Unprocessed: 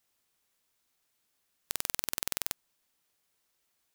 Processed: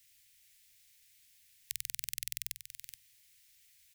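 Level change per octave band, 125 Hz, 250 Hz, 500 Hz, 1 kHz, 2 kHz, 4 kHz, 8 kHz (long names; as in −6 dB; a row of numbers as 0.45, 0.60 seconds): −6.5 dB, below −25 dB, below −30 dB, below −25 dB, −6.5 dB, −5.0 dB, −4.0 dB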